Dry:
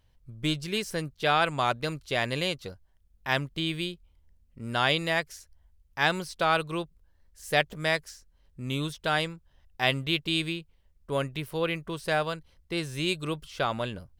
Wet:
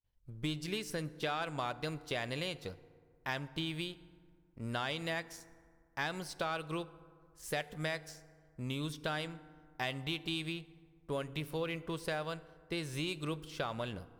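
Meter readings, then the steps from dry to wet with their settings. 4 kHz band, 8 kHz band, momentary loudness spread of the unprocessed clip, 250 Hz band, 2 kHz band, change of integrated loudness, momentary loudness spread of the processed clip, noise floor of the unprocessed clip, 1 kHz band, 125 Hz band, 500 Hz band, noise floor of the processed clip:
-10.0 dB, -6.5 dB, 12 LU, -7.5 dB, -11.0 dB, -10.0 dB, 13 LU, -64 dBFS, -11.5 dB, -7.5 dB, -9.0 dB, -67 dBFS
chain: expander -57 dBFS; sample leveller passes 1; compressor, threshold -27 dBFS, peak gain reduction 11 dB; FDN reverb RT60 2 s, low-frequency decay 1.1×, high-frequency decay 0.45×, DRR 15.5 dB; gain -6.5 dB

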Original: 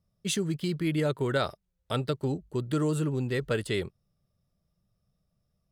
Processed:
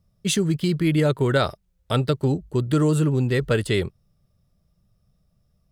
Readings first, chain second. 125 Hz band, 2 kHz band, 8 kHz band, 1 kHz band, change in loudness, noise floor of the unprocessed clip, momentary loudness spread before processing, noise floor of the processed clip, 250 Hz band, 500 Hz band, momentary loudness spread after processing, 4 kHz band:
+9.0 dB, +6.5 dB, +6.5 dB, +6.5 dB, +8.0 dB, -78 dBFS, 5 LU, -68 dBFS, +8.0 dB, +7.0 dB, 5 LU, +6.5 dB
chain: low shelf 120 Hz +6.5 dB; gain +6.5 dB

